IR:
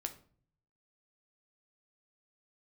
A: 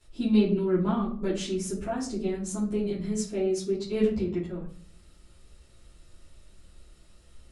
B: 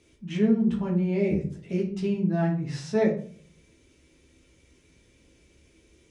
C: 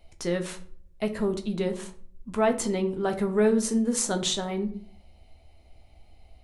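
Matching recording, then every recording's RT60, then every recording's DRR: C; 0.45, 0.50, 0.50 seconds; −11.5, −3.0, 5.0 decibels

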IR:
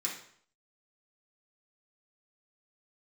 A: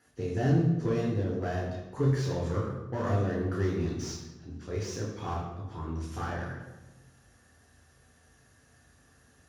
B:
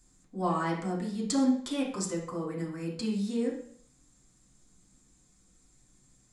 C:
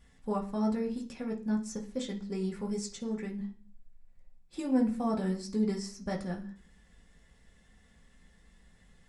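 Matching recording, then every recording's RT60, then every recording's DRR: B; 1.1, 0.60, 0.45 seconds; −4.0, −5.0, −3.0 decibels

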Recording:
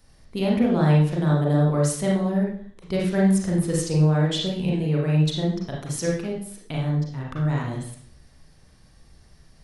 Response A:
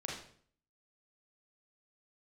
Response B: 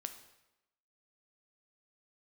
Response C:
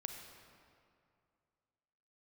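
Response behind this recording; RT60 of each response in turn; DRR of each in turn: A; 0.55, 0.95, 2.4 seconds; −3.0, 7.5, 4.0 decibels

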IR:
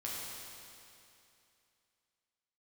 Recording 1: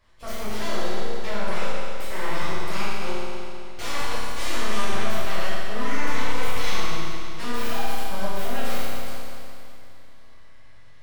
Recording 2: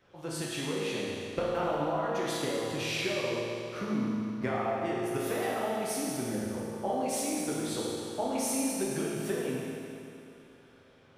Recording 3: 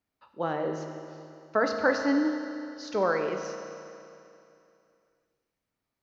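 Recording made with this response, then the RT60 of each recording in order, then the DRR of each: 2; 2.7, 2.7, 2.7 seconds; −11.5, −6.0, 3.5 decibels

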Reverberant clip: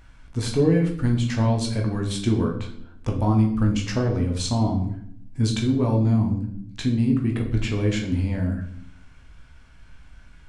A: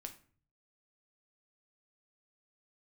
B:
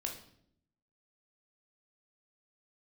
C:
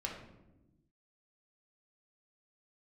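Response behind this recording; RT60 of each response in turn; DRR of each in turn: B; 0.45, 0.65, 1.0 seconds; 5.0, 0.5, −1.5 decibels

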